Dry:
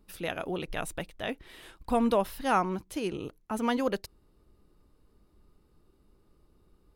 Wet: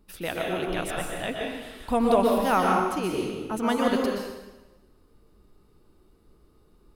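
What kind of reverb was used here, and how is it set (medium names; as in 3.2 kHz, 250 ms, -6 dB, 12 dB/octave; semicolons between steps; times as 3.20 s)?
plate-style reverb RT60 1.1 s, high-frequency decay 0.95×, pre-delay 110 ms, DRR -1 dB; trim +2 dB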